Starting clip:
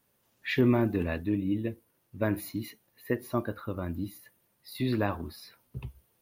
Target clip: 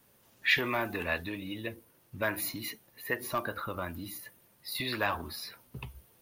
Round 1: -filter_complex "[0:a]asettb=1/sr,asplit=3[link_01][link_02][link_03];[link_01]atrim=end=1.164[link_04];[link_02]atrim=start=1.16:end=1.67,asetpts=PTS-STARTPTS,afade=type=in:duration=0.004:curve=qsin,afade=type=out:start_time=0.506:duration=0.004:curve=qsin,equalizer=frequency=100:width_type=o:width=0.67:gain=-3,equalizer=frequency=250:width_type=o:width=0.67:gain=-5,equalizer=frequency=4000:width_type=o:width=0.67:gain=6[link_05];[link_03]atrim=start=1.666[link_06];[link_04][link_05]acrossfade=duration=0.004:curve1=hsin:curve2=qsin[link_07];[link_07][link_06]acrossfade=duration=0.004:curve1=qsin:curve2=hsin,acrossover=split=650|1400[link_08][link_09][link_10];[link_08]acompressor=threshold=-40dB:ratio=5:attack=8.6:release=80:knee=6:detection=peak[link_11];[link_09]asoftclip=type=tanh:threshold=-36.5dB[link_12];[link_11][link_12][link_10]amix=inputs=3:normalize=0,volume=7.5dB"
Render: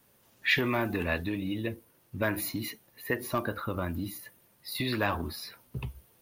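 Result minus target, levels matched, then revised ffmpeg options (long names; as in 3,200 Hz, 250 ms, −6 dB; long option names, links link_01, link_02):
downward compressor: peak gain reduction −8 dB
-filter_complex "[0:a]asettb=1/sr,asplit=3[link_01][link_02][link_03];[link_01]atrim=end=1.164[link_04];[link_02]atrim=start=1.16:end=1.67,asetpts=PTS-STARTPTS,afade=type=in:duration=0.004:curve=qsin,afade=type=out:start_time=0.506:duration=0.004:curve=qsin,equalizer=frequency=100:width_type=o:width=0.67:gain=-3,equalizer=frequency=250:width_type=o:width=0.67:gain=-5,equalizer=frequency=4000:width_type=o:width=0.67:gain=6[link_05];[link_03]atrim=start=1.666[link_06];[link_04][link_05]acrossfade=duration=0.004:curve1=hsin:curve2=qsin[link_07];[link_07][link_06]acrossfade=duration=0.004:curve1=qsin:curve2=hsin,acrossover=split=650|1400[link_08][link_09][link_10];[link_08]acompressor=threshold=-50dB:ratio=5:attack=8.6:release=80:knee=6:detection=peak[link_11];[link_09]asoftclip=type=tanh:threshold=-36.5dB[link_12];[link_11][link_12][link_10]amix=inputs=3:normalize=0,volume=7.5dB"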